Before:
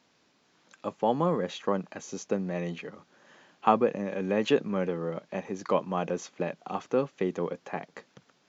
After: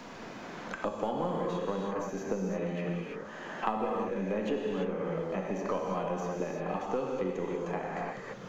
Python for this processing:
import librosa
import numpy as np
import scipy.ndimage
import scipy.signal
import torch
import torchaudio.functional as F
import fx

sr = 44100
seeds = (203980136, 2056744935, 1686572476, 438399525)

y = np.where(x < 0.0, 10.0 ** (-3.0 / 20.0) * x, x)
y = fx.peak_eq(y, sr, hz=3600.0, db=-3.5, octaves=1.8)
y = fx.rev_gated(y, sr, seeds[0], gate_ms=360, shape='flat', drr_db=-2.0)
y = fx.band_squash(y, sr, depth_pct=100)
y = y * 10.0 ** (-6.5 / 20.0)